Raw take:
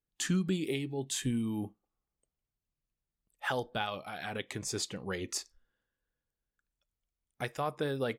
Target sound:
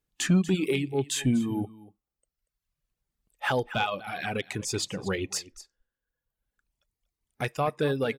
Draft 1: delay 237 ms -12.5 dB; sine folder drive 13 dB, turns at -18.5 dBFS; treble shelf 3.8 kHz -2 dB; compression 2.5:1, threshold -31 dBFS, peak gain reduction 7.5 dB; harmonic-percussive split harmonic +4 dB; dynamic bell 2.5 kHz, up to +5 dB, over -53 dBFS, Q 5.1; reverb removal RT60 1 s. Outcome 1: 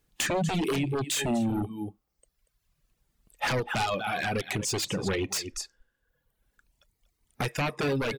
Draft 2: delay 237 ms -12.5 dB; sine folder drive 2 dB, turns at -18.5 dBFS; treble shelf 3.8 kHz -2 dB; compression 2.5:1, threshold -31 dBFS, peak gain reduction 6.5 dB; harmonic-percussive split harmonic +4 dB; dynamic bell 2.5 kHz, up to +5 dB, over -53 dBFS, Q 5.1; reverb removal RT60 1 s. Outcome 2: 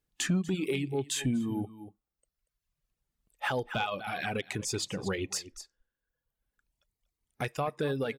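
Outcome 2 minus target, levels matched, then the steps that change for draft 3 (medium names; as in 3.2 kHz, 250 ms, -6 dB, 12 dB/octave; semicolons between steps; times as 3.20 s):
compression: peak gain reduction +6.5 dB
remove: compression 2.5:1, threshold -31 dBFS, peak gain reduction 6.5 dB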